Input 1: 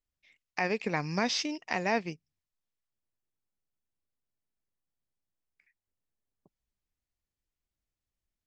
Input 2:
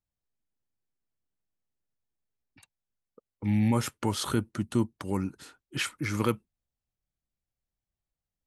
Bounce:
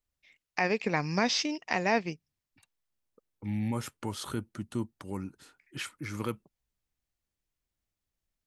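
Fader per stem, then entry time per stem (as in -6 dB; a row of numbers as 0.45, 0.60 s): +2.0, -7.0 dB; 0.00, 0.00 s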